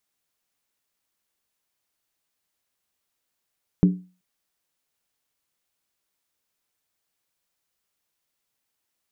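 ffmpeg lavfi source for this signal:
-f lavfi -i "aevalsrc='0.335*pow(10,-3*t/0.34)*sin(2*PI*182*t)+0.133*pow(10,-3*t/0.269)*sin(2*PI*290.1*t)+0.0531*pow(10,-3*t/0.233)*sin(2*PI*388.8*t)+0.0211*pow(10,-3*t/0.224)*sin(2*PI*417.9*t)+0.00841*pow(10,-3*t/0.209)*sin(2*PI*482.8*t)':d=0.38:s=44100"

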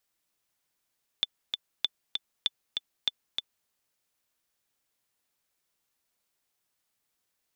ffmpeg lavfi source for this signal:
-f lavfi -i "aevalsrc='pow(10,(-12-4.5*gte(mod(t,2*60/195),60/195))/20)*sin(2*PI*3510*mod(t,60/195))*exp(-6.91*mod(t,60/195)/0.03)':d=2.46:s=44100"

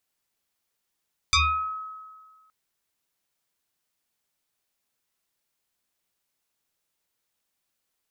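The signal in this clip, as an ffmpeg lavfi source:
-f lavfi -i "aevalsrc='0.168*pow(10,-3*t/1.63)*sin(2*PI*1280*t+5*pow(10,-3*t/0.51)*sin(2*PI*0.94*1280*t))':d=1.17:s=44100"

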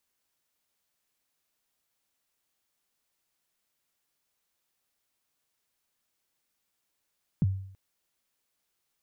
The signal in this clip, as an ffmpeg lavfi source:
-f lavfi -i "aevalsrc='0.119*pow(10,-3*t/0.63)*sin(2*PI*(210*0.029/log(96/210)*(exp(log(96/210)*min(t,0.029)/0.029)-1)+96*max(t-0.029,0)))':d=0.33:s=44100"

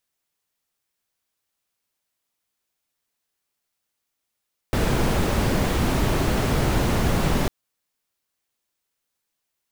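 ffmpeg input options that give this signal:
-f lavfi -i "anoisesrc=c=brown:a=0.442:d=2.75:r=44100:seed=1"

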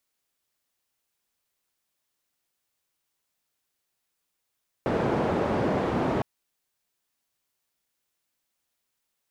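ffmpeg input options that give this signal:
-f lavfi -i "anoisesrc=c=white:d=1.36:r=44100:seed=1,highpass=f=98,lowpass=f=590,volume=-4.7dB"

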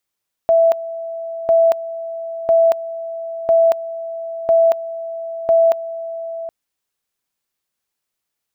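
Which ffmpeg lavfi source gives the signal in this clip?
-f lavfi -i "aevalsrc='pow(10,(-9-15*gte(mod(t,1),0.23))/20)*sin(2*PI*662*t)':d=6:s=44100"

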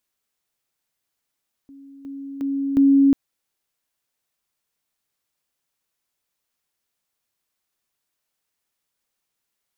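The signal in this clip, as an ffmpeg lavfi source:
-f lavfi -i "aevalsrc='pow(10,(-41+10*floor(t/0.36))/20)*sin(2*PI*276*t)':d=1.44:s=44100"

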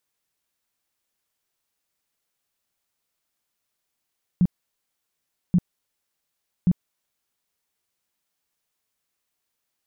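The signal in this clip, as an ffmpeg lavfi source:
-f lavfi -i "aevalsrc='0.211*sin(2*PI*178*mod(t,1.13))*lt(mod(t,1.13),8/178)':d=3.39:s=44100"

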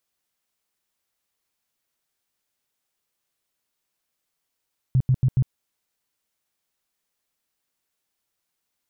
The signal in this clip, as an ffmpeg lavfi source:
-f lavfi -i "aevalsrc='0.188*sin(2*PI*129*mod(t,0.14))*lt(mod(t,0.14),7/129)':d=0.56:s=44100"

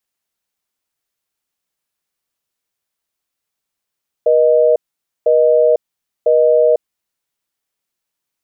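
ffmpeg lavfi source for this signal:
-f lavfi -i "aevalsrc='0.282*(sin(2*PI*480*t)+sin(2*PI*620*t))*clip(min(mod(t,1),0.5-mod(t,1))/0.005,0,1)':d=2.76:s=44100"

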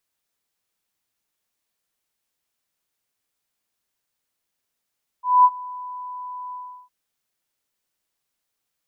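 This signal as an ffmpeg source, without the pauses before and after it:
-f lavfi -i "aevalsrc='0.398*sin(2*PI*996*t)':d=1.659:s=44100,afade=t=in:d=0.215,afade=t=out:st=0.215:d=0.049:silence=0.075,afade=t=out:st=1.3:d=0.359"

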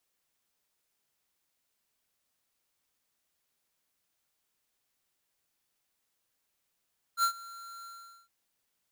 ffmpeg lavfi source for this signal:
-f lavfi -i "aevalsrc='0.0596*(2*lt(mod(1370*t,1),0.5)-1)':d=1.115:s=44100,afade=t=in:d=0.064,afade=t=out:st=0.064:d=0.088:silence=0.0841,afade=t=out:st=0.68:d=0.435"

